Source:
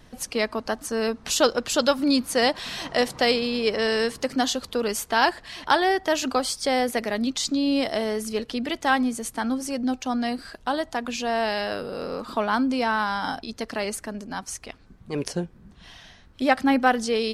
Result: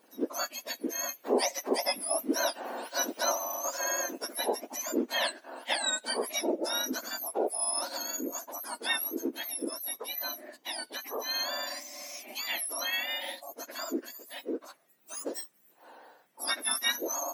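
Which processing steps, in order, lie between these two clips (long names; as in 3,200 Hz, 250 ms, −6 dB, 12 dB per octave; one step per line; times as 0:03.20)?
frequency axis turned over on the octave scale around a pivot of 1,700 Hz
level −5.5 dB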